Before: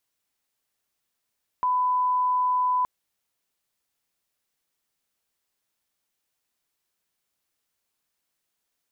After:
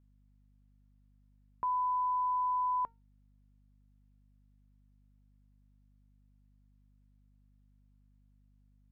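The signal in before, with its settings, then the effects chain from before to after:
line-up tone −20 dBFS 1.22 s
low-pass filter 1,200 Hz 6 dB per octave
tuned comb filter 460 Hz, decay 0.23 s, harmonics all, mix 50%
mains hum 50 Hz, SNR 26 dB

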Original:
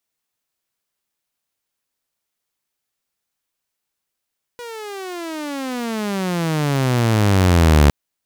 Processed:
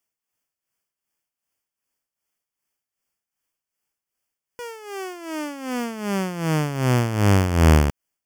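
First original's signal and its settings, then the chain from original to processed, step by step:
pitch glide with a swell saw, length 3.31 s, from 488 Hz, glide −33.5 semitones, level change +22 dB, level −6 dB
amplitude tremolo 2.6 Hz, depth 68%
Butterworth band-reject 3,900 Hz, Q 3.5

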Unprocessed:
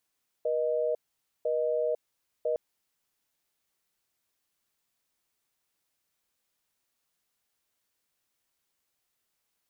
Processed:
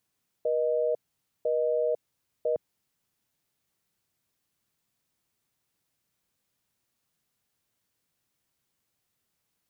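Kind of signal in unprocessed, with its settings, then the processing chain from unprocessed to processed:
call progress tone busy tone, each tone −28 dBFS 2.11 s
parametric band 130 Hz +10.5 dB 2.2 octaves

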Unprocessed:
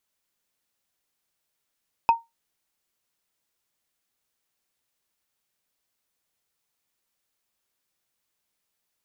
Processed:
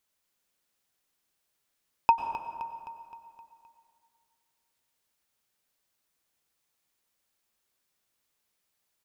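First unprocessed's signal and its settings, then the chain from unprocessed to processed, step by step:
struck wood, lowest mode 922 Hz, decay 0.19 s, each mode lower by 12 dB, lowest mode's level −10 dB
repeating echo 260 ms, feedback 53%, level −12 dB
dense smooth reverb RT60 2.1 s, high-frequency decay 0.5×, pre-delay 85 ms, DRR 8 dB

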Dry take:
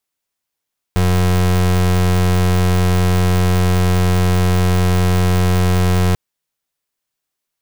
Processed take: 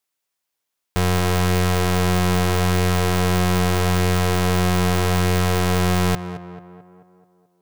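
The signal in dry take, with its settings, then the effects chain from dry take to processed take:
pulse wave 90.5 Hz, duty 31% −13.5 dBFS 5.19 s
low-shelf EQ 270 Hz −6.5 dB
tape delay 218 ms, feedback 61%, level −9 dB, low-pass 1,800 Hz

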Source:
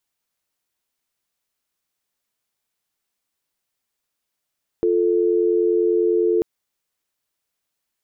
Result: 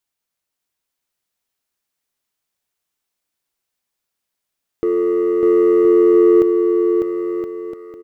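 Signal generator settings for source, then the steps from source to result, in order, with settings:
call progress tone dial tone, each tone −18 dBFS 1.59 s
leveller curve on the samples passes 1
on a send: bouncing-ball delay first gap 600 ms, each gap 0.7×, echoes 5

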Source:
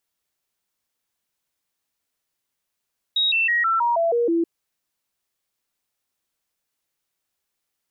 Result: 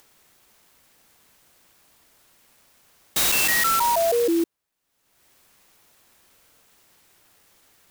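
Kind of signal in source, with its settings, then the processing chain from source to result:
stepped sweep 3,790 Hz down, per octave 2, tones 8, 0.16 s, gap 0.00 s −17 dBFS
upward compression, threshold −38 dBFS
buffer that repeats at 0:06.33, samples 2,048, times 5
converter with an unsteady clock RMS 0.071 ms

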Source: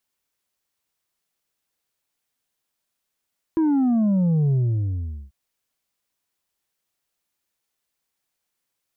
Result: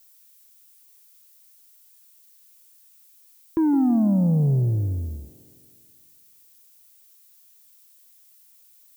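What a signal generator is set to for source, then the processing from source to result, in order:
bass drop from 330 Hz, over 1.74 s, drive 4 dB, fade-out 0.78 s, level −17 dB
background noise violet −55 dBFS
delay with a band-pass on its return 162 ms, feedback 60%, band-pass 510 Hz, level −10 dB

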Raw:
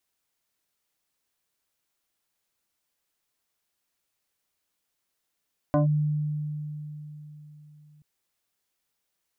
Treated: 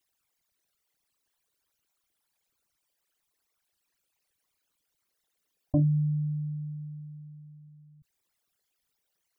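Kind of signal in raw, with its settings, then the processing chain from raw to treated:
two-operator FM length 2.28 s, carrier 150 Hz, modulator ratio 2.95, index 1.7, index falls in 0.13 s linear, decay 3.85 s, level −17.5 dB
spectral envelope exaggerated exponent 3

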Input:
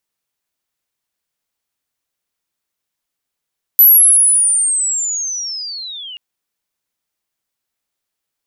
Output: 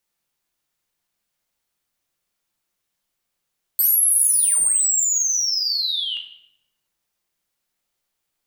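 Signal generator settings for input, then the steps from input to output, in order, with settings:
glide linear 12,000 Hz → 2,800 Hz −3 dBFS → −28 dBFS 2.38 s
dynamic equaliser 3,900 Hz, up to +4 dB, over −36 dBFS, Q 1.3
soft clipping −17.5 dBFS
rectangular room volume 300 cubic metres, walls mixed, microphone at 0.87 metres

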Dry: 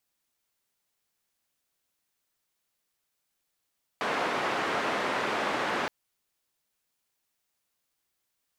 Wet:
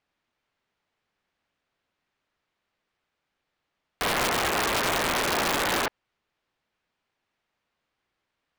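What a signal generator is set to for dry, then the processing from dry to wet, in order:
band-limited noise 250–1,500 Hz, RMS −29.5 dBFS 1.87 s
low-pass filter 2,700 Hz 12 dB per octave
in parallel at +2 dB: brickwall limiter −26.5 dBFS
on the sum: wrap-around overflow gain 18.5 dB

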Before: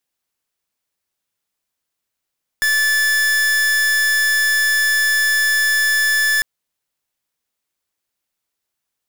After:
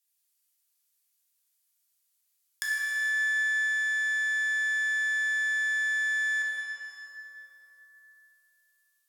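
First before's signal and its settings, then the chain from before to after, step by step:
pulse wave 1,740 Hz, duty 44% −16 dBFS 3.80 s
treble cut that deepens with the level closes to 1,400 Hz, closed at −21.5 dBFS
first difference
dense smooth reverb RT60 3.4 s, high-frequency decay 0.65×, DRR −5 dB

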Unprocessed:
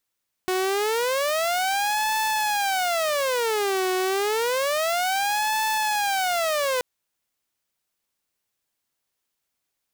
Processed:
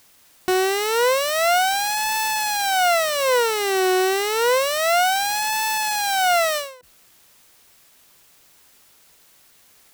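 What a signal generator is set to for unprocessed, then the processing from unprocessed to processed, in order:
siren wail 370–873 Hz 0.29 per second saw −19 dBFS 6.33 s
EQ curve with evenly spaced ripples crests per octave 2, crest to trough 8 dB
in parallel at −6 dB: bit-depth reduction 8 bits, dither triangular
on the sum: every ending faded ahead of time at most 110 dB per second

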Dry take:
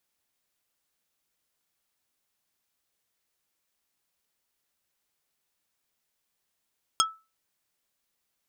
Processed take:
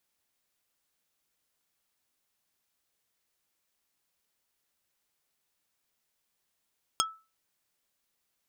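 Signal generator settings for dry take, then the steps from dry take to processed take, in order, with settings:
struck wood plate, lowest mode 1,310 Hz, decay 0.28 s, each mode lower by 0 dB, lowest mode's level −18.5 dB
downward compressor 2.5 to 1, threshold −27 dBFS

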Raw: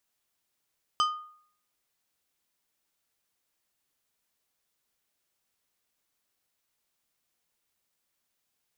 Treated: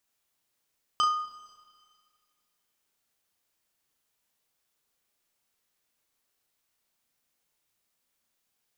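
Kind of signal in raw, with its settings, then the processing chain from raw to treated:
struck glass plate, lowest mode 1,230 Hz, decay 0.58 s, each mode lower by 5.5 dB, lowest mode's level −20 dB
flutter between parallel walls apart 6 metres, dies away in 0.32 s
four-comb reverb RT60 2.1 s, combs from 27 ms, DRR 13 dB

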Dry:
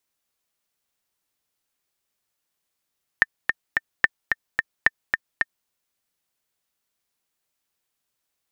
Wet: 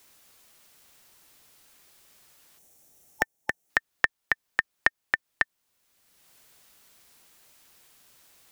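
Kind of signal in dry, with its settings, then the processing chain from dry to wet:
click track 219 BPM, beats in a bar 3, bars 3, 1,800 Hz, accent 5 dB −1.5 dBFS
gain on a spectral selection 0:02.58–0:03.70, 870–5,400 Hz −10 dB
multiband upward and downward compressor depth 70%

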